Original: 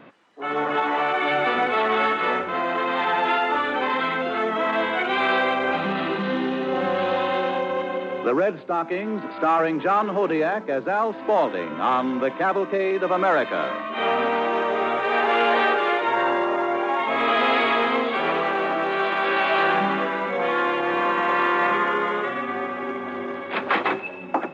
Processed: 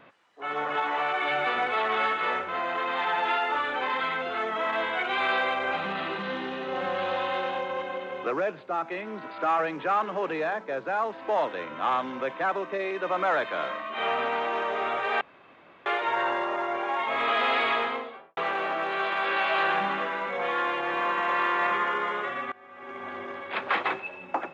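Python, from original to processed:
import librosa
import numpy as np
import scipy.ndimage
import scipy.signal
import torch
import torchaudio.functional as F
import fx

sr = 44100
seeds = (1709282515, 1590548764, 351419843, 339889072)

y = fx.studio_fade_out(x, sr, start_s=17.72, length_s=0.65)
y = fx.edit(y, sr, fx.room_tone_fill(start_s=15.21, length_s=0.65),
    fx.fade_in_from(start_s=22.52, length_s=0.52, curve='qua', floor_db=-20.0), tone=tone)
y = fx.peak_eq(y, sr, hz=250.0, db=-9.0, octaves=1.7)
y = y * 10.0 ** (-3.5 / 20.0)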